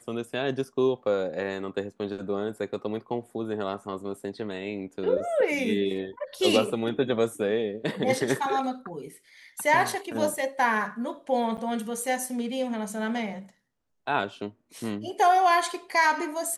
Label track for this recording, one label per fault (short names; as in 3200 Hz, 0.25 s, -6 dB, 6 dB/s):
11.570000	11.580000	gap 8.5 ms